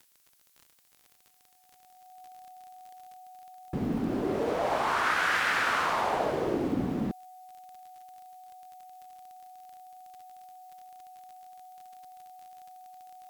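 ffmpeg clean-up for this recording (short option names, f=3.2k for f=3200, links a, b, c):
-af "adeclick=t=4,bandreject=f=740:w=30,agate=range=-21dB:threshold=-55dB"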